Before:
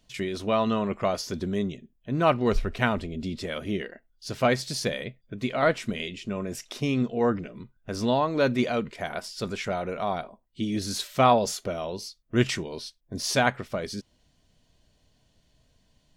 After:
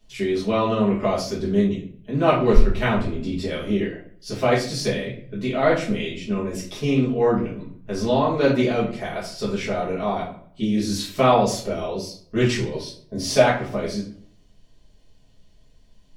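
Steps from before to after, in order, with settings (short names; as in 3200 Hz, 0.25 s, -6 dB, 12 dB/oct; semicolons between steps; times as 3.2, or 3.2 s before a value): 12.75–13.43 bell 600 Hz +10.5 dB 0.28 oct; tape echo 0.12 s, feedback 40%, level -22.5 dB, low-pass 3400 Hz; shoebox room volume 37 m³, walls mixed, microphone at 1.4 m; Doppler distortion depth 0.12 ms; gain -4.5 dB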